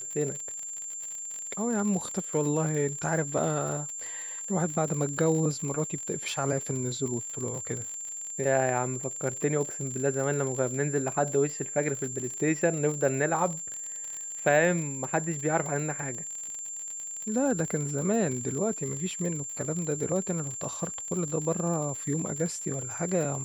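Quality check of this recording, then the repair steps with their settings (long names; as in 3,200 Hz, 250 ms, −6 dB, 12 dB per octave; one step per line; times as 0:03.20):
surface crackle 56 per second −33 dBFS
whistle 7,300 Hz −35 dBFS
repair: click removal
notch filter 7,300 Hz, Q 30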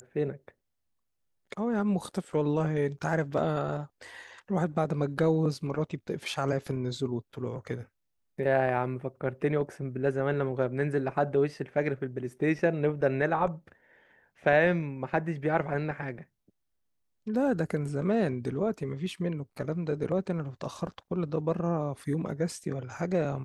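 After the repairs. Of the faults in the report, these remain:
none of them is left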